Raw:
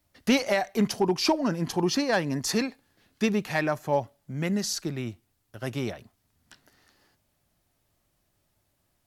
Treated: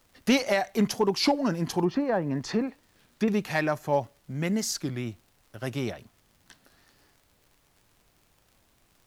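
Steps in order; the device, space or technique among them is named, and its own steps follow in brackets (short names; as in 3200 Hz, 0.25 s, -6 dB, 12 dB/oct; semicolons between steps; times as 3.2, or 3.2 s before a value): 1.84–3.28 treble ducked by the level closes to 990 Hz, closed at -21 dBFS; warped LP (record warp 33 1/3 rpm, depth 160 cents; crackle 77/s -48 dBFS; pink noise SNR 37 dB)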